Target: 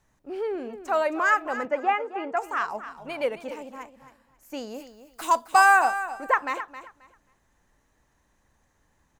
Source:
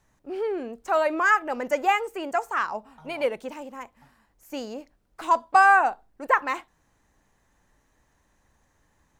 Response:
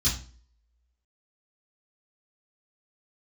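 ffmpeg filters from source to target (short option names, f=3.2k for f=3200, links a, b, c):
-filter_complex "[0:a]asettb=1/sr,asplit=3[a][b][c];[a]atrim=end=1.654[d];[b]atrim=start=1.65:end=2.37,asetpts=PTS-STARTPTS,afade=t=in:d=0.004:c=qsin,afade=t=out:st=0.716:d=0.004:c=qsin,highpass=140,lowpass=2.2k[e];[c]atrim=start=2.366[f];[d][e]acrossfade=d=0.004:c1=hsin:c2=qsin[g];[g][f]acrossfade=d=0.004:c1=qsin:c2=hsin,asettb=1/sr,asplit=3[h][i][j];[h]atrim=end=4.744[k];[i]atrim=start=4.74:end=5.85,asetpts=PTS-STARTPTS,afade=t=in:d=0.004:c=qsin,afade=t=out:st=1.106:d=0.004:c=qsin,aemphasis=mode=production:type=75kf[l];[j]atrim=start=5.846[m];[k][l]acrossfade=d=0.004:c1=hsin:c2=qsin[n];[n][m]acrossfade=d=0.004:c1=qsin:c2=hsin,aecho=1:1:267|534|801:0.237|0.0498|0.0105,volume=-1.5dB"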